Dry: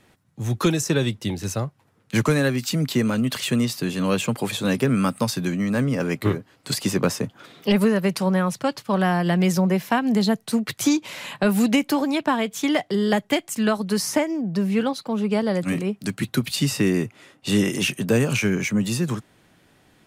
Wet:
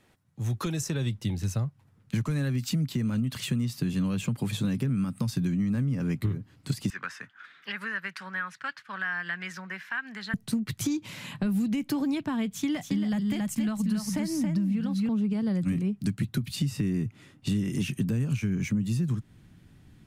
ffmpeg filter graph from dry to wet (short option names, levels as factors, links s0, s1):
-filter_complex "[0:a]asettb=1/sr,asplit=3[s0][s1][s2];[s0]atrim=end=6.904[s3];[s1]atrim=start=6.9:end=10.34,asetpts=PTS-STARTPTS,afade=t=in:d=0.004:c=qsin,afade=t=out:st=3.436:d=0.004:c=qsin,highpass=f=1600:t=q:w=4.3,aemphasis=mode=reproduction:type=riaa[s4];[s2]atrim=start=10.336[s5];[s3][s4]acrossfade=d=0.004:c1=hsin:c2=qsin[s6];[s6][s5]acrossfade=d=0.004:c1=qsin:c2=hsin,asettb=1/sr,asplit=3[s7][s8][s9];[s7]atrim=end=12.494[s10];[s8]atrim=start=12.49:end=15.09,asetpts=PTS-STARTPTS,afade=t=in:d=0.004:c=qsin,afade=t=out:st=2.596:d=0.004:c=qsin,equalizer=f=400:w=7.2:g=-14.5,aecho=1:1:276:0.562,atrim=end_sample=114660[s11];[s9]atrim=start=15.086[s12];[s10][s11]acrossfade=d=0.004:c1=hsin:c2=qsin[s13];[s13][s12]acrossfade=d=0.004:c1=qsin:c2=hsin,alimiter=limit=0.188:level=0:latency=1:release=165,asubboost=boost=8:cutoff=190,acompressor=threshold=0.126:ratio=6,volume=0.473"